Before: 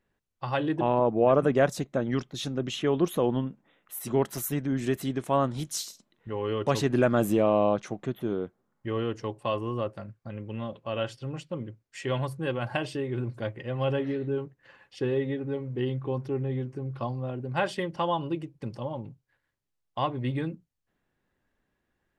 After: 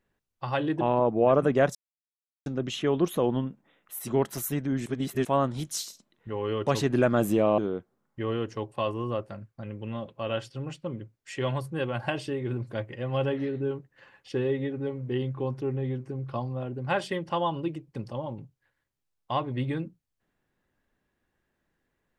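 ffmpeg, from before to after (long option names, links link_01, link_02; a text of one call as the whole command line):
ffmpeg -i in.wav -filter_complex "[0:a]asplit=6[link_01][link_02][link_03][link_04][link_05][link_06];[link_01]atrim=end=1.75,asetpts=PTS-STARTPTS,afade=type=out:start_time=1.746:duration=0.004:curve=hsin[link_07];[link_02]atrim=start=1.75:end=2.46,asetpts=PTS-STARTPTS,volume=0[link_08];[link_03]atrim=start=2.46:end=4.862,asetpts=PTS-STARTPTS,afade=type=in:duration=0.004:curve=hsin[link_09];[link_04]atrim=start=4.858:end=5.252,asetpts=PTS-STARTPTS,areverse[link_10];[link_05]atrim=start=5.248:end=7.582[link_11];[link_06]atrim=start=8.248[link_12];[link_07][link_08][link_09]concat=n=3:v=0:a=1[link_13];[link_13][link_10]acrossfade=duration=0.004:curve1=hsin:curve2=hsin[link_14];[link_14][link_11]acrossfade=duration=0.004:curve1=hsin:curve2=hsin[link_15];[link_15][link_12]acrossfade=duration=0.004:curve1=hsin:curve2=hsin" out.wav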